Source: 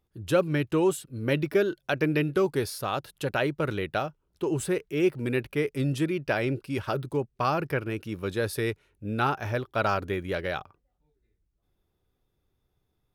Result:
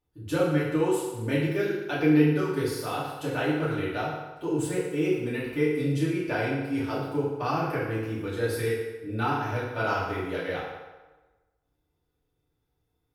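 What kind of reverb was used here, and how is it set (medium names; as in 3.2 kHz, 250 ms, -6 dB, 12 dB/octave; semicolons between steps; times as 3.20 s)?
FDN reverb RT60 1.2 s, low-frequency decay 0.75×, high-frequency decay 0.75×, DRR -9 dB; trim -10 dB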